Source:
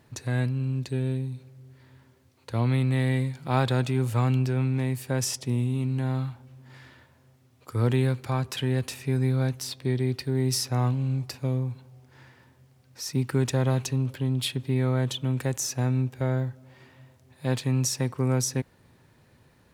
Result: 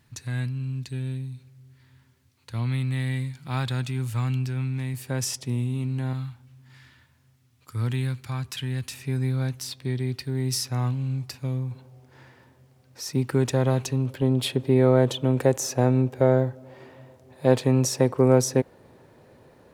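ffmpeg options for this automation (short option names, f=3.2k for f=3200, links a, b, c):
-af "asetnsamples=n=441:p=0,asendcmd='4.94 equalizer g -3;6.13 equalizer g -12.5;8.94 equalizer g -5;11.71 equalizer g 4.5;14.22 equalizer g 13',equalizer=f=510:t=o:w=2:g=-11.5"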